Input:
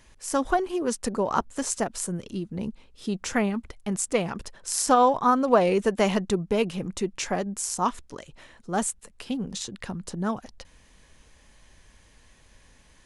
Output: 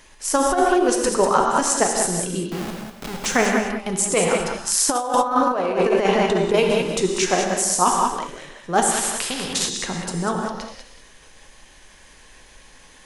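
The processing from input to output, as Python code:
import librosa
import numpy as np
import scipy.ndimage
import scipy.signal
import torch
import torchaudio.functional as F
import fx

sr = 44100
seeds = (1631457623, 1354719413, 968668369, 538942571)

p1 = fx.peak_eq(x, sr, hz=200.0, db=-4.5, octaves=0.25)
p2 = fx.level_steps(p1, sr, step_db=12)
p3 = p1 + (p2 * 10.0 ** (0.0 / 20.0))
p4 = fx.schmitt(p3, sr, flips_db=-34.0, at=(2.49, 3.26))
p5 = fx.lowpass(p4, sr, hz=fx.line((5.6, 4200.0), (6.41, 2400.0)), slope=6, at=(5.6, 6.41), fade=0.02)
p6 = p5 + fx.echo_single(p5, sr, ms=194, db=-7.5, dry=0)
p7 = fx.rev_gated(p6, sr, seeds[0], gate_ms=220, shape='flat', drr_db=2.0)
p8 = fx.over_compress(p7, sr, threshold_db=-17.0, ratio=-0.5)
p9 = fx.peak_eq(p8, sr, hz=77.0, db=-11.0, octaves=2.7)
p10 = fx.spectral_comp(p9, sr, ratio=2.0, at=(8.9, 9.68), fade=0.02)
y = p10 * 10.0 ** (2.5 / 20.0)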